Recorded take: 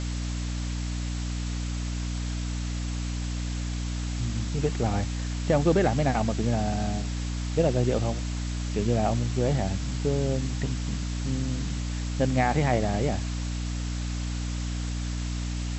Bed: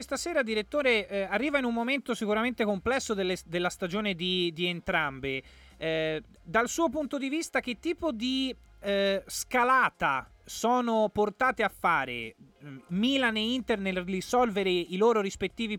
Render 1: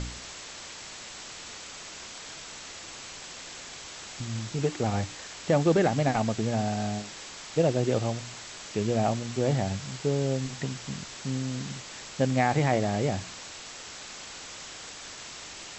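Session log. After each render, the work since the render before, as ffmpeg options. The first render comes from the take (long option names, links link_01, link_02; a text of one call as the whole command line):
ffmpeg -i in.wav -af "bandreject=frequency=60:width_type=h:width=4,bandreject=frequency=120:width_type=h:width=4,bandreject=frequency=180:width_type=h:width=4,bandreject=frequency=240:width_type=h:width=4,bandreject=frequency=300:width_type=h:width=4" out.wav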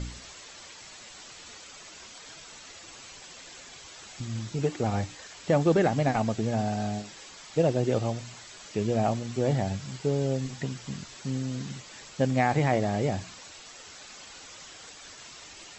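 ffmpeg -i in.wav -af "afftdn=noise_reduction=8:noise_floor=-43" out.wav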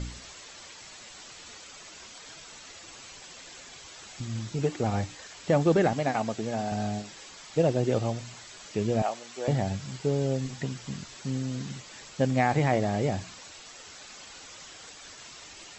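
ffmpeg -i in.wav -filter_complex "[0:a]asettb=1/sr,asplit=3[link_01][link_02][link_03];[link_01]atrim=end=5.934[link_04];[link_02]atrim=start=5.93:end=6.72,asetpts=PTS-STARTPTS,afade=type=in:duration=0.004:curve=qsin,afade=type=out:start_time=0.786:duration=0.004:curve=qsin,highpass=frequency=280:poles=1[link_05];[link_03]atrim=start=6.716[link_06];[link_04][link_05]acrossfade=duration=0.004:curve1=hsin:curve2=qsin[link_07];[link_07][link_06]acrossfade=duration=0.004:curve1=qsin:curve2=hsin,asettb=1/sr,asplit=3[link_08][link_09][link_10];[link_08]atrim=end=9.024[link_11];[link_09]atrim=start=9.02:end=9.48,asetpts=PTS-STARTPTS,afade=type=in:duration=0.004:curve=qsin,afade=type=out:start_time=0.456:duration=0.004:curve=qsin,highpass=620[link_12];[link_10]atrim=start=9.476[link_13];[link_11][link_12]acrossfade=duration=0.004:curve1=hsin:curve2=qsin[link_14];[link_14][link_13]acrossfade=duration=0.004:curve1=qsin:curve2=hsin" out.wav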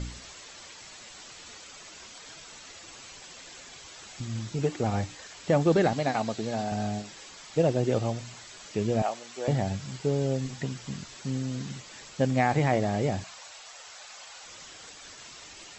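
ffmpeg -i in.wav -filter_complex "[0:a]asettb=1/sr,asplit=3[link_01][link_02][link_03];[link_01]atrim=end=5.724[link_04];[link_02]atrim=start=5.72:end=6.64,asetpts=PTS-STARTPTS,afade=type=in:duration=0.004:curve=qsin,afade=type=out:start_time=0.916:duration=0.004:curve=qsin,equalizer=frequency=4100:width=4.1:gain=6.5[link_05];[link_03]atrim=start=6.636[link_06];[link_04][link_05]acrossfade=duration=0.004:curve1=hsin:curve2=qsin[link_07];[link_07][link_06]acrossfade=duration=0.004:curve1=qsin:curve2=hsin,asettb=1/sr,asplit=3[link_08][link_09][link_10];[link_08]atrim=end=13.244[link_11];[link_09]atrim=start=13.24:end=14.46,asetpts=PTS-STARTPTS,afade=type=in:duration=0.004:curve=qsin,afade=type=out:start_time=1.216:duration=0.004:curve=qsin,lowshelf=frequency=450:width_type=q:width=1.5:gain=-12[link_12];[link_10]atrim=start=14.456[link_13];[link_11][link_12]acrossfade=duration=0.004:curve1=hsin:curve2=qsin[link_14];[link_14][link_13]acrossfade=duration=0.004:curve1=qsin:curve2=hsin" out.wav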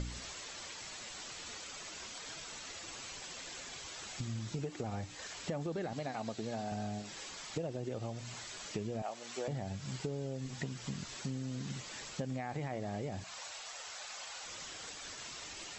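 ffmpeg -i in.wav -af "alimiter=limit=-18dB:level=0:latency=1:release=87,acompressor=threshold=-36dB:ratio=6" out.wav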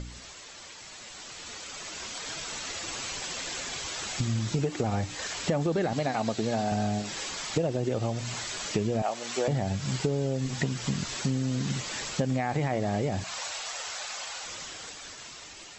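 ffmpeg -i in.wav -af "dynaudnorm=framelen=420:gausssize=9:maxgain=11dB" out.wav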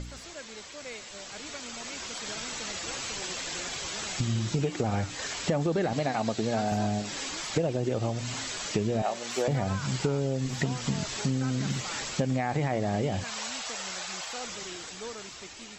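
ffmpeg -i in.wav -i bed.wav -filter_complex "[1:a]volume=-17.5dB[link_01];[0:a][link_01]amix=inputs=2:normalize=0" out.wav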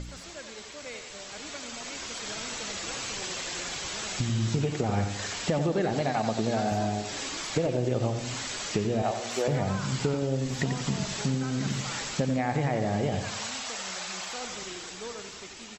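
ffmpeg -i in.wav -filter_complex "[0:a]asplit=2[link_01][link_02];[link_02]adelay=89,lowpass=frequency=4800:poles=1,volume=-8dB,asplit=2[link_03][link_04];[link_04]adelay=89,lowpass=frequency=4800:poles=1,volume=0.48,asplit=2[link_05][link_06];[link_06]adelay=89,lowpass=frequency=4800:poles=1,volume=0.48,asplit=2[link_07][link_08];[link_08]adelay=89,lowpass=frequency=4800:poles=1,volume=0.48,asplit=2[link_09][link_10];[link_10]adelay=89,lowpass=frequency=4800:poles=1,volume=0.48,asplit=2[link_11][link_12];[link_12]adelay=89,lowpass=frequency=4800:poles=1,volume=0.48[link_13];[link_01][link_03][link_05][link_07][link_09][link_11][link_13]amix=inputs=7:normalize=0" out.wav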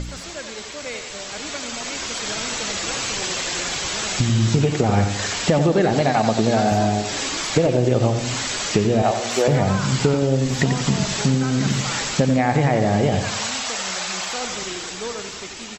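ffmpeg -i in.wav -af "volume=9.5dB" out.wav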